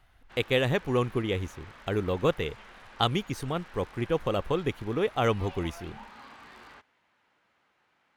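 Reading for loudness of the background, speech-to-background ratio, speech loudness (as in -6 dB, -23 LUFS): -49.5 LUFS, 20.0 dB, -29.5 LUFS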